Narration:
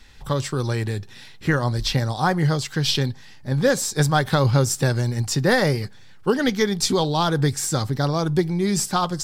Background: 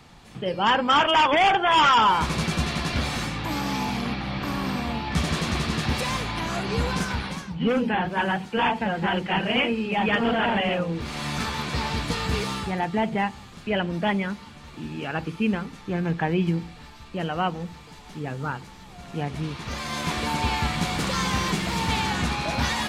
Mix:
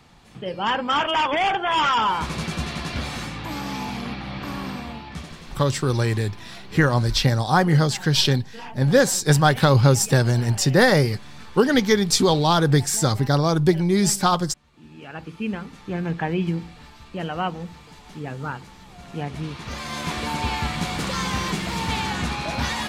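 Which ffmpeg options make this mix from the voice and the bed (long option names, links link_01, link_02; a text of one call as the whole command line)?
ffmpeg -i stem1.wav -i stem2.wav -filter_complex "[0:a]adelay=5300,volume=2.5dB[link_01];[1:a]volume=13.5dB,afade=type=out:start_time=4.59:duration=0.78:silence=0.199526,afade=type=in:start_time=14.71:duration=1.21:silence=0.158489[link_02];[link_01][link_02]amix=inputs=2:normalize=0" out.wav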